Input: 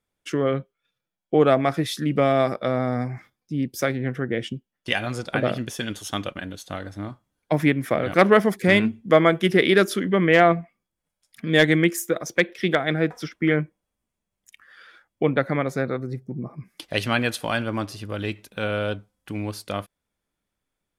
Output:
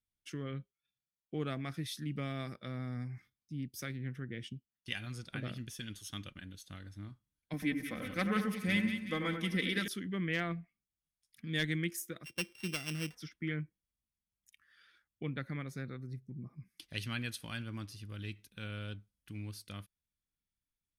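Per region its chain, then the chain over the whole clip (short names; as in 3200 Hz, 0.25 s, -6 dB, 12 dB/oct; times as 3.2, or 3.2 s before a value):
7.53–9.88 comb 3.9 ms, depth 62% + split-band echo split 1900 Hz, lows 90 ms, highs 0.185 s, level -7 dB
12.24–13.15 sample sorter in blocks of 16 samples + high shelf 7500 Hz -7.5 dB
whole clip: passive tone stack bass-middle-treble 6-0-2; notch 7300 Hz, Q 8.4; gain +3.5 dB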